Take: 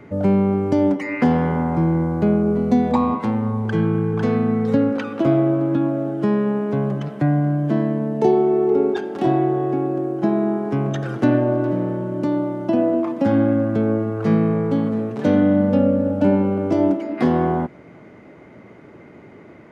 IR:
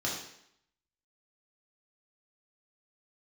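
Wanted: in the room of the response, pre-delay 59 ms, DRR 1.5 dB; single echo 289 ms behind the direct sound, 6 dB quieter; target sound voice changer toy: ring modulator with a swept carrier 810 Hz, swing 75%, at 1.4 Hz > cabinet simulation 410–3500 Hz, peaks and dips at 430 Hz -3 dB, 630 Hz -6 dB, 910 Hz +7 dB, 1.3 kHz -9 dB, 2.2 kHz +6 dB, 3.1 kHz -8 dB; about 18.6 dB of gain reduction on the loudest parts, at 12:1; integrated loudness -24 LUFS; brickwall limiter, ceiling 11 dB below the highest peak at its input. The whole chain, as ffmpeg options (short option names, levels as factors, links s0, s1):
-filter_complex "[0:a]acompressor=threshold=0.0282:ratio=12,alimiter=level_in=2:limit=0.0631:level=0:latency=1,volume=0.501,aecho=1:1:289:0.501,asplit=2[s0][s1];[1:a]atrim=start_sample=2205,adelay=59[s2];[s1][s2]afir=irnorm=-1:irlink=0,volume=0.398[s3];[s0][s3]amix=inputs=2:normalize=0,aeval=exprs='val(0)*sin(2*PI*810*n/s+810*0.75/1.4*sin(2*PI*1.4*n/s))':c=same,highpass=410,equalizer=f=430:t=q:w=4:g=-3,equalizer=f=630:t=q:w=4:g=-6,equalizer=f=910:t=q:w=4:g=7,equalizer=f=1300:t=q:w=4:g=-9,equalizer=f=2200:t=q:w=4:g=6,equalizer=f=3100:t=q:w=4:g=-8,lowpass=f=3500:w=0.5412,lowpass=f=3500:w=1.3066,volume=5.01"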